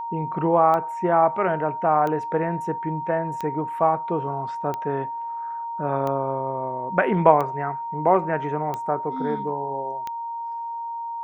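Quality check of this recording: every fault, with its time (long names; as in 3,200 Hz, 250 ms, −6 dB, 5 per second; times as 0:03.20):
scratch tick 45 rpm −16 dBFS
whistle 930 Hz −28 dBFS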